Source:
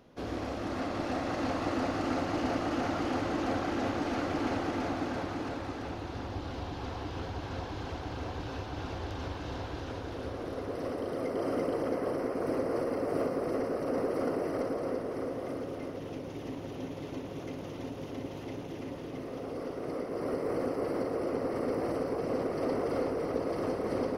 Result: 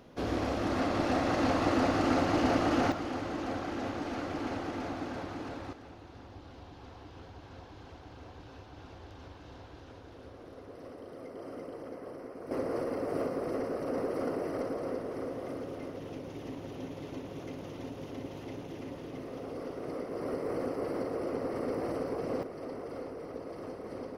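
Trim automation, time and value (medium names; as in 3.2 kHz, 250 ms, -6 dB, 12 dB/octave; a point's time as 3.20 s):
+4 dB
from 2.92 s -4 dB
from 5.73 s -11.5 dB
from 12.51 s -2 dB
from 22.43 s -9.5 dB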